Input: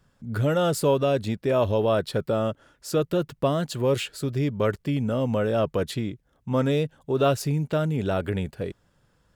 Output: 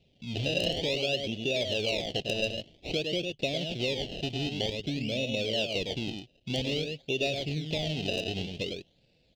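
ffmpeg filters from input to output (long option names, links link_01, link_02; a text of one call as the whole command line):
ffmpeg -i in.wav -af "lowshelf=frequency=140:gain=-8.5,aecho=1:1:102:0.473,acompressor=threshold=-31dB:ratio=3,acrusher=samples=27:mix=1:aa=0.000001:lfo=1:lforange=27:lforate=0.52,firequalizer=gain_entry='entry(680,0);entry(1100,-29);entry(2800,14);entry(10000,-20)':delay=0.05:min_phase=1" -ar 44100 -c:a aac -b:a 128k out.aac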